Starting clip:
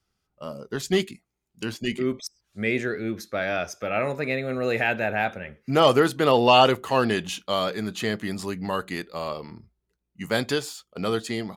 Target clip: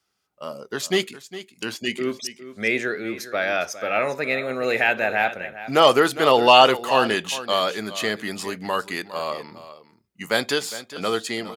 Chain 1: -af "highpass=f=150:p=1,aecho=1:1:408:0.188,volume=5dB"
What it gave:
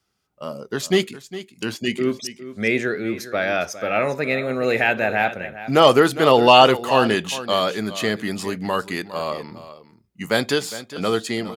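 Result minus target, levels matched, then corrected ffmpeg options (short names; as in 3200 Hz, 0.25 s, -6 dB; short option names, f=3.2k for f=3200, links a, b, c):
125 Hz band +6.5 dB
-af "highpass=f=500:p=1,aecho=1:1:408:0.188,volume=5dB"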